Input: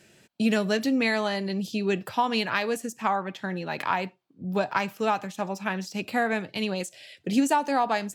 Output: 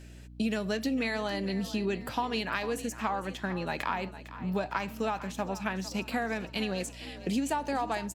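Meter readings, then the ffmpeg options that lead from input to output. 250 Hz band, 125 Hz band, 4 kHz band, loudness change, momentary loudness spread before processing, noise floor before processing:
-5.0 dB, -2.5 dB, -4.5 dB, -5.5 dB, 9 LU, -61 dBFS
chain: -filter_complex "[0:a]acompressor=threshold=0.0398:ratio=4,asplit=6[s0][s1][s2][s3][s4][s5];[s1]adelay=454,afreqshift=37,volume=0.188[s6];[s2]adelay=908,afreqshift=74,volume=0.0923[s7];[s3]adelay=1362,afreqshift=111,volume=0.0452[s8];[s4]adelay=1816,afreqshift=148,volume=0.0221[s9];[s5]adelay=2270,afreqshift=185,volume=0.0108[s10];[s0][s6][s7][s8][s9][s10]amix=inputs=6:normalize=0,aeval=exprs='val(0)+0.00447*(sin(2*PI*60*n/s)+sin(2*PI*2*60*n/s)/2+sin(2*PI*3*60*n/s)/3+sin(2*PI*4*60*n/s)/4+sin(2*PI*5*60*n/s)/5)':c=same"

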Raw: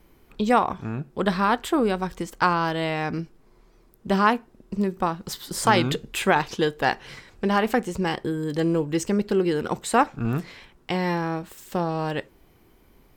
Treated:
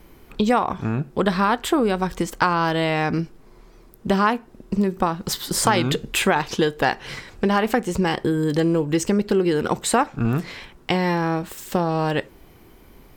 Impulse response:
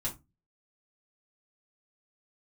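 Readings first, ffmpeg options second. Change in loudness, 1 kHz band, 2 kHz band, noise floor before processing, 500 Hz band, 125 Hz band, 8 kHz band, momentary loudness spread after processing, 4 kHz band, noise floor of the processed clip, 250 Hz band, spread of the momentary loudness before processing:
+3.0 dB, +1.5 dB, +2.0 dB, -57 dBFS, +3.0 dB, +4.0 dB, +6.5 dB, 7 LU, +4.0 dB, -49 dBFS, +3.5 dB, 11 LU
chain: -af "acompressor=threshold=0.0501:ratio=2.5,volume=2.51"

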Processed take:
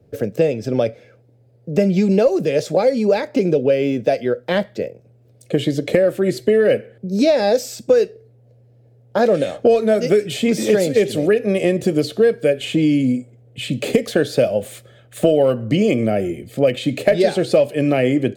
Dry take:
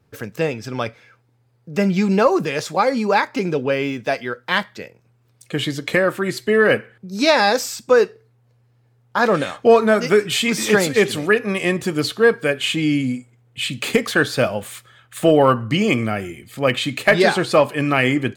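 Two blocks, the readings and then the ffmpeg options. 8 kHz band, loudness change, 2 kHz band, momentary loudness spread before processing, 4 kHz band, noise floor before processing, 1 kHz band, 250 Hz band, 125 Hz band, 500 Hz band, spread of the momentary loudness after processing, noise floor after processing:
-4.0 dB, +0.5 dB, -8.5 dB, 11 LU, -5.5 dB, -60 dBFS, -7.0 dB, +2.5 dB, +1.5 dB, +2.5 dB, 8 LU, -52 dBFS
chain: -filter_complex "[0:a]lowshelf=f=780:t=q:w=3:g=9.5,acrossover=split=110|1900[s0][s1][s2];[s0]acompressor=threshold=0.0126:ratio=4[s3];[s1]acompressor=threshold=0.251:ratio=4[s4];[s2]acompressor=threshold=0.0562:ratio=4[s5];[s3][s4][s5]amix=inputs=3:normalize=0,volume=0.794"

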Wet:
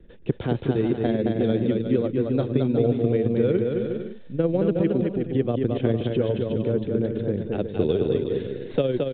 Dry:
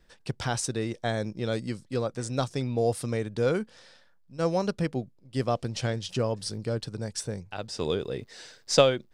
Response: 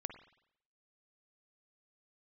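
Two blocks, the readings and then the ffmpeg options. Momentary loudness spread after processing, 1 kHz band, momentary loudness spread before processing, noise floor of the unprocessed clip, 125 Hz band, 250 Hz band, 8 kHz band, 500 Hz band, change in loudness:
6 LU, -4.0 dB, 9 LU, -60 dBFS, +5.5 dB, +10.0 dB, under -40 dB, +5.5 dB, +5.5 dB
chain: -filter_complex "[0:a]lowshelf=f=600:t=q:w=1.5:g=13.5,acrossover=split=220|1200|3100[s0][s1][s2][s3];[s0]acompressor=threshold=0.0282:ratio=4[s4];[s1]acompressor=threshold=0.0794:ratio=4[s5];[s2]acompressor=threshold=0.00794:ratio=4[s6];[s3]acompressor=threshold=0.00794:ratio=4[s7];[s4][s5][s6][s7]amix=inputs=4:normalize=0,tremolo=f=20:d=0.45,aecho=1:1:220|363|456|516.4|555.6:0.631|0.398|0.251|0.158|0.1,aresample=8000,aresample=44100,volume=1.19"

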